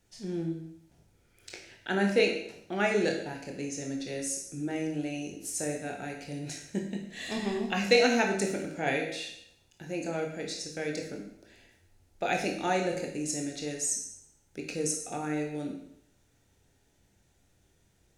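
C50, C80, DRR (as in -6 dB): 6.0 dB, 8.5 dB, 1.5 dB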